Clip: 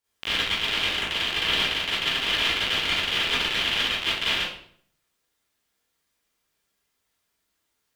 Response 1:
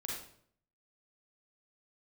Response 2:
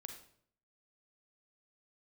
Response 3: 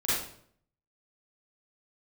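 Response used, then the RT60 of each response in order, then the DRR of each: 3; 0.60, 0.60, 0.60 seconds; −3.5, 4.5, −11.0 decibels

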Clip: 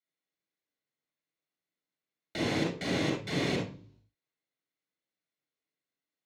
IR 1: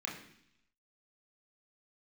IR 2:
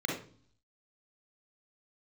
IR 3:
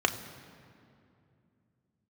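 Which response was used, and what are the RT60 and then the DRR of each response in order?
2; 0.70, 0.45, 2.6 seconds; −3.0, −1.5, 5.0 decibels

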